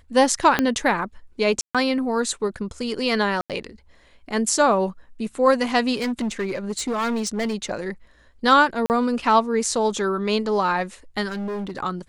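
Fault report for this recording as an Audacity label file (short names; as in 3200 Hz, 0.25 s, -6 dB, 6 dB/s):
0.590000	0.590000	pop -5 dBFS
1.610000	1.750000	gap 0.136 s
3.410000	3.500000	gap 87 ms
5.960000	7.550000	clipped -21 dBFS
8.860000	8.900000	gap 39 ms
11.280000	11.790000	clipped -26 dBFS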